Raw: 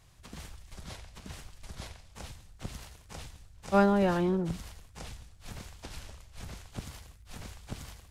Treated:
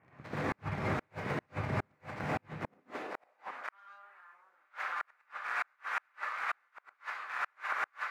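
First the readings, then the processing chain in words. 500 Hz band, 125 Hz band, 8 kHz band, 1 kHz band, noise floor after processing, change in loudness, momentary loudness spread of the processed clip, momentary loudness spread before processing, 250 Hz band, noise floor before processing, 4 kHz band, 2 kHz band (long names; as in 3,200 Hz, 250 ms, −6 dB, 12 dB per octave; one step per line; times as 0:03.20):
−9.0 dB, −3.5 dB, −12.0 dB, −0.5 dB, −74 dBFS, −8.0 dB, 11 LU, 22 LU, −10.5 dB, −56 dBFS, −5.0 dB, +7.5 dB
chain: ceiling on every frequency bin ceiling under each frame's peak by 17 dB
Butterworth low-pass 2,300 Hz 48 dB per octave
in parallel at −1 dB: downward compressor 5 to 1, threshold −41 dBFS, peak gain reduction 20 dB
on the sum: leveller curve on the samples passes 2
high-pass filter sweep 120 Hz → 1,300 Hz, 0:02.43–0:03.53
on a send: feedback echo with a high-pass in the loop 354 ms, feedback 67%, high-pass 310 Hz, level −22 dB
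on the sum: reverb whose tail is shaped and stops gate 160 ms rising, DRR −8 dB
gate with flip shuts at −15 dBFS, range −40 dB
level −7 dB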